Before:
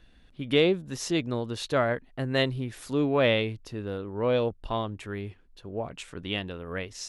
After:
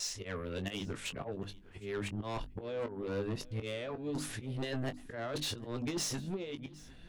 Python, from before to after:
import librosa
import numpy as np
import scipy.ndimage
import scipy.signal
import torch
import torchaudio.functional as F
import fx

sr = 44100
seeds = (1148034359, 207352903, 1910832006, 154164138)

y = x[::-1].copy()
y = fx.hum_notches(y, sr, base_hz=50, count=6)
y = fx.over_compress(y, sr, threshold_db=-28.0, ratio=-0.5)
y = fx.auto_swell(y, sr, attack_ms=200.0)
y = 10.0 ** (-32.0 / 20.0) * np.tanh(y / 10.0 ** (-32.0 / 20.0))
y = fx.doubler(y, sr, ms=20.0, db=-9.5)
y = y + 10.0 ** (-22.0 / 20.0) * np.pad(y, (int(760 * sr / 1000.0), 0))[:len(y)]